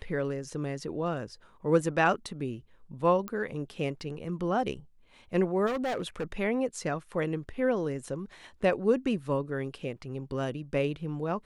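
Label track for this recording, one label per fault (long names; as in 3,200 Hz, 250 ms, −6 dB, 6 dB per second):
3.280000	3.280000	click −21 dBFS
5.660000	6.320000	clipping −27.5 dBFS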